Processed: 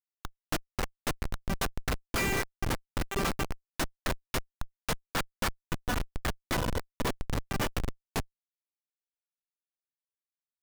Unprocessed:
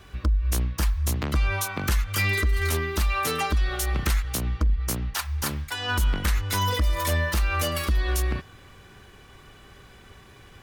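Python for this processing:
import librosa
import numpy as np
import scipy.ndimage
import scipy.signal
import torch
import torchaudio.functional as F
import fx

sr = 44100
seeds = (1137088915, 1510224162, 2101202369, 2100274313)

p1 = scipy.signal.sosfilt(scipy.signal.butter(4, 1100.0, 'highpass', fs=sr, output='sos'), x)
p2 = fx.rider(p1, sr, range_db=3, speed_s=2.0)
p3 = p1 + (p2 * 10.0 ** (-1.0 / 20.0))
y = fx.schmitt(p3, sr, flips_db=-18.0)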